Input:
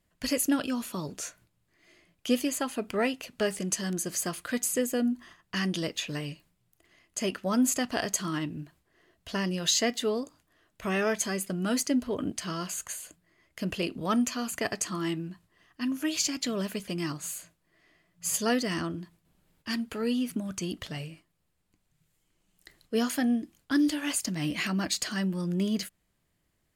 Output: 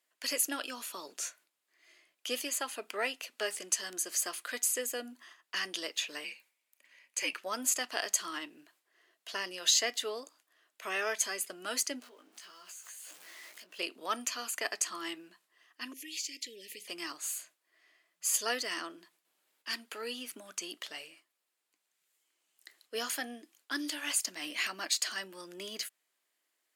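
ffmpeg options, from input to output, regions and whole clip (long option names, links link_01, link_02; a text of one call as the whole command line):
ffmpeg -i in.wav -filter_complex "[0:a]asettb=1/sr,asplit=3[link_01][link_02][link_03];[link_01]atrim=end=6.244[link_04];[link_02]atrim=start=6.24:end=7.39,asetpts=PTS-STARTPTS,afade=type=in:duration=0.004:curve=qsin,afade=type=out:start_time=1.146:duration=0.004:curve=qsin,bandreject=frequency=1400:width=22,afreqshift=-89,equalizer=frequency=2300:width_type=o:width=0.32:gain=10.5[link_05];[link_03]atrim=start=7.386[link_06];[link_04][link_05]acrossfade=duration=0.004:curve1=hsin:curve2=qsin[link_07];[link_07][link_06]acrossfade=duration=0.004:curve1=qsin:curve2=hsin,asettb=1/sr,asplit=3[link_08][link_09][link_10];[link_08]atrim=end=12.014[link_11];[link_09]atrim=start=12.01:end=13.79,asetpts=PTS-STARTPTS,afade=type=in:duration=0.004:curve=qsin,afade=type=out:start_time=1.776:duration=0.004:curve=qsin,aeval=exprs='val(0)+0.5*0.01*sgn(val(0))':channel_layout=same,acompressor=threshold=-41dB:ratio=16:attack=3.2:release=140:knee=1:detection=peak,flanger=delay=16:depth=3.4:speed=1.7[link_12];[link_10]atrim=start=13.786[link_13];[link_11][link_12]acrossfade=duration=0.004:curve1=hsin:curve2=qsin[link_14];[link_14][link_13]acrossfade=duration=0.004:curve1=qsin:curve2=hsin,asettb=1/sr,asplit=3[link_15][link_16][link_17];[link_15]atrim=end=15.934[link_18];[link_16]atrim=start=15.93:end=16.87,asetpts=PTS-STARTPTS,afade=type=in:duration=0.004:curve=qsin,afade=type=out:start_time=0.936:duration=0.004:curve=qsin,acompressor=threshold=-36dB:ratio=3:attack=3.2:release=140:knee=1:detection=peak,asuperstop=centerf=1000:order=20:qfactor=0.76[link_19];[link_17]atrim=start=16.866[link_20];[link_18][link_19]acrossfade=duration=0.004:curve1=hsin:curve2=qsin[link_21];[link_21][link_20]acrossfade=duration=0.004:curve1=qsin:curve2=hsin,highpass=frequency=310:width=0.5412,highpass=frequency=310:width=1.3066,tiltshelf=frequency=670:gain=-6.5,volume=-6.5dB" out.wav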